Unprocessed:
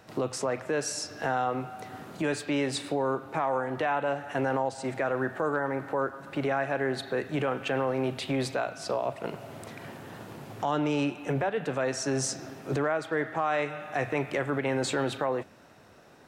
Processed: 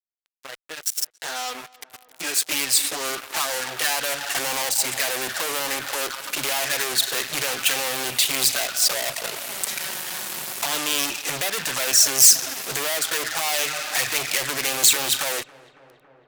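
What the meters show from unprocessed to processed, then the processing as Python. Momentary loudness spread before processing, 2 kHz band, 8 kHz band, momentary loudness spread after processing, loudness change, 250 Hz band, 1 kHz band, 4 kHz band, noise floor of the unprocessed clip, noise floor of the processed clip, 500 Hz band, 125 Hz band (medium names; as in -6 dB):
10 LU, +8.0 dB, +20.5 dB, 12 LU, +9.0 dB, -8.0 dB, +0.5 dB, +17.5 dB, -54 dBFS, -57 dBFS, -4.0 dB, -9.0 dB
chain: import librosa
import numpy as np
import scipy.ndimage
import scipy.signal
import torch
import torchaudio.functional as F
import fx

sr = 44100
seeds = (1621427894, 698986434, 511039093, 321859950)

p1 = fx.fade_in_head(x, sr, length_s=4.64)
p2 = fx.level_steps(p1, sr, step_db=16)
p3 = p1 + (p2 * 10.0 ** (2.0 / 20.0))
p4 = fx.env_flanger(p3, sr, rest_ms=9.6, full_db=-19.0)
p5 = fx.fuzz(p4, sr, gain_db=36.0, gate_db=-44.0)
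p6 = librosa.effects.preemphasis(p5, coef=0.97, zi=[0.0])
p7 = p6 + fx.echo_filtered(p6, sr, ms=278, feedback_pct=81, hz=2000.0, wet_db=-21.5, dry=0)
y = p7 * 10.0 ** (5.5 / 20.0)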